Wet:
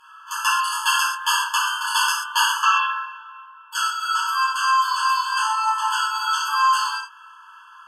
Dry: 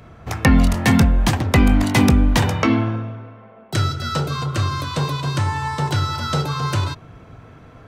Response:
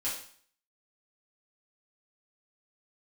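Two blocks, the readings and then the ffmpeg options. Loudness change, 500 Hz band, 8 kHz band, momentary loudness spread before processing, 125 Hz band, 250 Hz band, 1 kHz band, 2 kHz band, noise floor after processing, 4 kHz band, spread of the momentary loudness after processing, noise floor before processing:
-1.5 dB, under -40 dB, +5.0 dB, 10 LU, under -40 dB, under -40 dB, +6.5 dB, +4.0 dB, -47 dBFS, +4.5 dB, 8 LU, -44 dBFS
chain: -filter_complex "[1:a]atrim=start_sample=2205,afade=t=out:st=0.14:d=0.01,atrim=end_sample=6615,asetrate=27342,aresample=44100[s0];[0:a][s0]afir=irnorm=-1:irlink=0,afftfilt=real='re*eq(mod(floor(b*sr/1024/870),2),1)':imag='im*eq(mod(floor(b*sr/1024/870),2),1)':win_size=1024:overlap=0.75"

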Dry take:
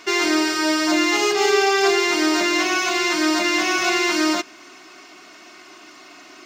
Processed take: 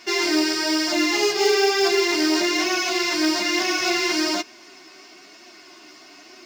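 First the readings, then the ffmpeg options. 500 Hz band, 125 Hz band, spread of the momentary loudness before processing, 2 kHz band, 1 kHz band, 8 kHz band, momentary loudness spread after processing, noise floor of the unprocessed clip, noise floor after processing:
-1.0 dB, no reading, 3 LU, -3.5 dB, -4.5 dB, -1.5 dB, 3 LU, -45 dBFS, -47 dBFS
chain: -af "equalizer=f=400:t=o:w=0.33:g=3,equalizer=f=1250:t=o:w=0.33:g=-6,equalizer=f=5000:t=o:w=0.33:g=7,flanger=delay=7.9:depth=5.8:regen=-1:speed=1.1:shape=triangular,acrusher=bits=6:mode=log:mix=0:aa=0.000001"

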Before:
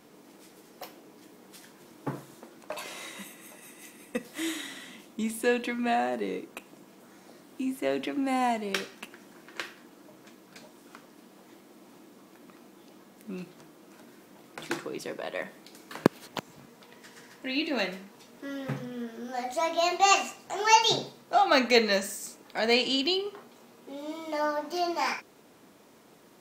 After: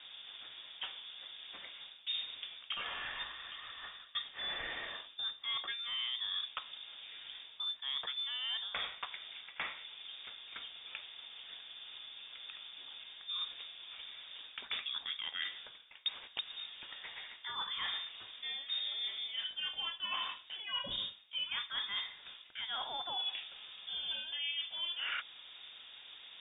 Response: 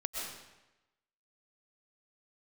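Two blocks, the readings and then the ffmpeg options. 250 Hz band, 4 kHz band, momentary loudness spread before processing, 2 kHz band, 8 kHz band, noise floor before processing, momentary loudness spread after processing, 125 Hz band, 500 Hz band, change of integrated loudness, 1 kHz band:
under -30 dB, -1.0 dB, 22 LU, -9.0 dB, under -40 dB, -56 dBFS, 11 LU, under -20 dB, -28.0 dB, -10.5 dB, -18.5 dB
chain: -af "lowshelf=f=150:t=q:w=1.5:g=8.5,areverse,acompressor=threshold=0.01:ratio=12,areverse,lowpass=f=3200:t=q:w=0.5098,lowpass=f=3200:t=q:w=0.6013,lowpass=f=3200:t=q:w=0.9,lowpass=f=3200:t=q:w=2.563,afreqshift=-3800,volume=1.68"

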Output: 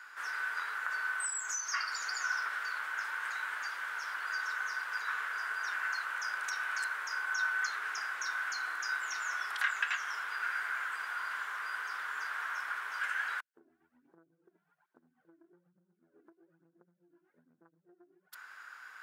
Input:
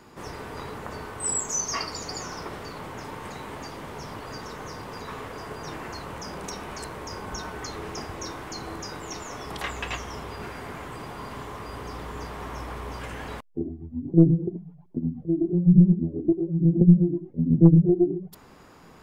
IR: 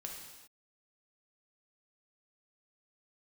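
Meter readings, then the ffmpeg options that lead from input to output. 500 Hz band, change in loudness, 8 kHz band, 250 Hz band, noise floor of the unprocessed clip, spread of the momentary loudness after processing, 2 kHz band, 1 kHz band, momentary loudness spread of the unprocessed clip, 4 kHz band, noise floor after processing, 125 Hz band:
-29.0 dB, -10.0 dB, -8.5 dB, under -40 dB, -51 dBFS, 5 LU, +9.0 dB, -2.0 dB, 19 LU, -4.5 dB, -78 dBFS, under -40 dB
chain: -af "acompressor=threshold=0.0316:ratio=16,highpass=f=1500:t=q:w=8.3,volume=0.631"

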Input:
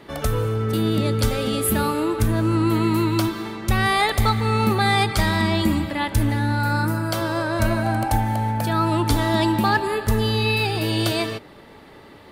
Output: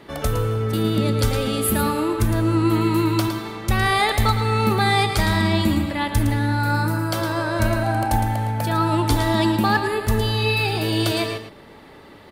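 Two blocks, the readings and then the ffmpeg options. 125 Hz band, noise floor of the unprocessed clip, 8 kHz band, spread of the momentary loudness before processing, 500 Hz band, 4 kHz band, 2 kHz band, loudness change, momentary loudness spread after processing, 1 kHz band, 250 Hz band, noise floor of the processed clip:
+1.0 dB, -45 dBFS, +0.5 dB, 5 LU, +0.5 dB, +0.5 dB, +0.5 dB, +0.5 dB, 5 LU, +0.5 dB, +0.5 dB, -45 dBFS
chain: -af "aecho=1:1:111:0.376"

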